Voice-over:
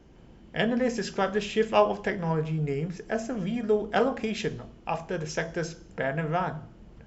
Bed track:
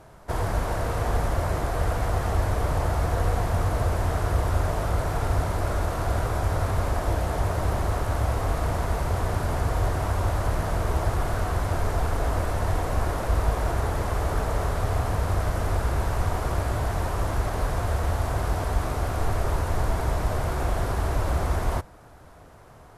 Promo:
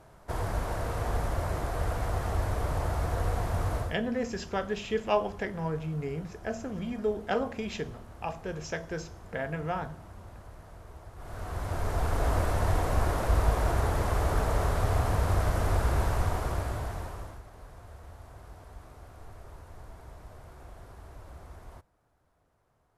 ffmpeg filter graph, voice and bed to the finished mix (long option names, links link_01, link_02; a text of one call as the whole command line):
ffmpeg -i stem1.wav -i stem2.wav -filter_complex "[0:a]adelay=3350,volume=-5dB[link_01];[1:a]volume=16dB,afade=type=out:start_time=3.76:duration=0.21:silence=0.133352,afade=type=in:start_time=11.15:duration=1.16:silence=0.0841395,afade=type=out:start_time=16.02:duration=1.4:silence=0.0891251[link_02];[link_01][link_02]amix=inputs=2:normalize=0" out.wav